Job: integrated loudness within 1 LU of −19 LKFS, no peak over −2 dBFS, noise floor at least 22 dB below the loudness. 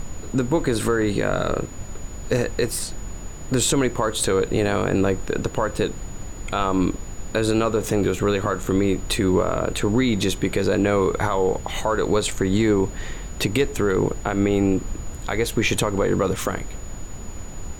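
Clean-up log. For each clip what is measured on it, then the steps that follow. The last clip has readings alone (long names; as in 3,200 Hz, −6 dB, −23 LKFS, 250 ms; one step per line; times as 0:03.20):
interfering tone 6,900 Hz; level of the tone −43 dBFS; background noise floor −35 dBFS; target noise floor −45 dBFS; integrated loudness −22.5 LKFS; sample peak −8.5 dBFS; target loudness −19.0 LKFS
→ notch filter 6,900 Hz, Q 30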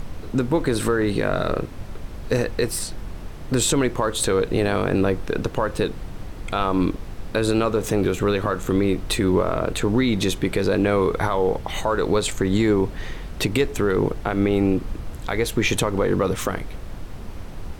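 interfering tone none found; background noise floor −35 dBFS; target noise floor −45 dBFS
→ noise reduction from a noise print 10 dB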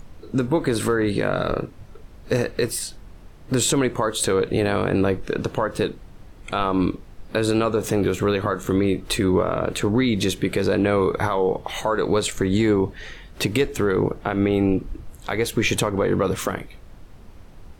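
background noise floor −45 dBFS; integrated loudness −22.5 LKFS; sample peak −9.0 dBFS; target loudness −19.0 LKFS
→ level +3.5 dB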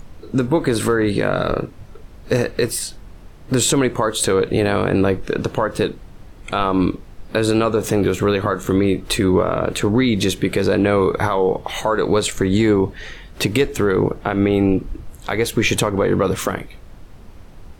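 integrated loudness −19.0 LKFS; sample peak −5.5 dBFS; background noise floor −41 dBFS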